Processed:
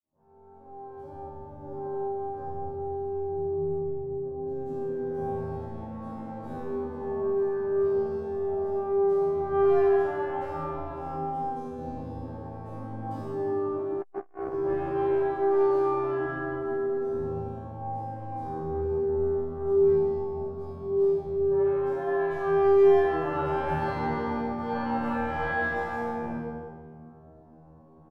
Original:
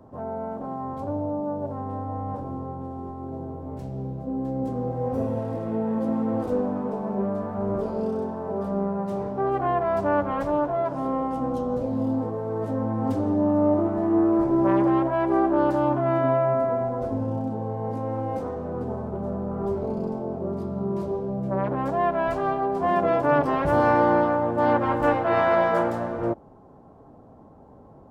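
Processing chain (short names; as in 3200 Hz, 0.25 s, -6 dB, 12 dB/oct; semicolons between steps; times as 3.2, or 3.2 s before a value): opening faded in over 1.62 s; 3.6–4.47 LPF 1000 Hz 12 dB/oct; resonator 79 Hz, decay 1 s, harmonics all, mix 100%; speakerphone echo 0.16 s, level -9 dB; reverb RT60 1.5 s, pre-delay 3 ms, DRR -11.5 dB; 14.01–14.54 core saturation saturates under 520 Hz; gain -3.5 dB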